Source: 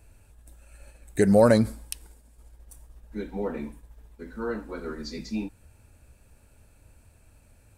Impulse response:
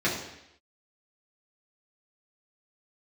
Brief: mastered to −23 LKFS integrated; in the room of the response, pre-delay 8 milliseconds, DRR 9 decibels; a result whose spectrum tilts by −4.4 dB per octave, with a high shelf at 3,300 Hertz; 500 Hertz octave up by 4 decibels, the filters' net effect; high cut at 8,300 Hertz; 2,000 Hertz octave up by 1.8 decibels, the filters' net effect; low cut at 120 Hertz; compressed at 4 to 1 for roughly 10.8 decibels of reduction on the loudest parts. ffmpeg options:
-filter_complex "[0:a]highpass=120,lowpass=8300,equalizer=frequency=500:width_type=o:gain=4.5,equalizer=frequency=2000:width_type=o:gain=3,highshelf=frequency=3300:gain=-3.5,acompressor=threshold=-23dB:ratio=4,asplit=2[link_01][link_02];[1:a]atrim=start_sample=2205,adelay=8[link_03];[link_02][link_03]afir=irnorm=-1:irlink=0,volume=-22dB[link_04];[link_01][link_04]amix=inputs=2:normalize=0,volume=8dB"

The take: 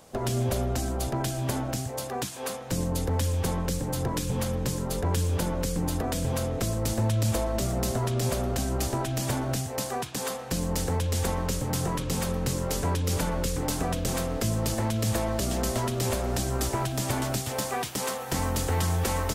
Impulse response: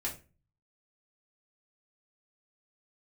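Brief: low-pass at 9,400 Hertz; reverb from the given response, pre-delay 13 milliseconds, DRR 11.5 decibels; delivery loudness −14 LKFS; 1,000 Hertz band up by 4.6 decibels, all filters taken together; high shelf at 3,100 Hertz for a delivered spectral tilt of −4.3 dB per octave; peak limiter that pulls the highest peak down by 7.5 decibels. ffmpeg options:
-filter_complex "[0:a]lowpass=9400,equalizer=frequency=1000:width_type=o:gain=5,highshelf=frequency=3100:gain=7.5,alimiter=limit=-19dB:level=0:latency=1,asplit=2[link_01][link_02];[1:a]atrim=start_sample=2205,adelay=13[link_03];[link_02][link_03]afir=irnorm=-1:irlink=0,volume=-14dB[link_04];[link_01][link_04]amix=inputs=2:normalize=0,volume=14dB"

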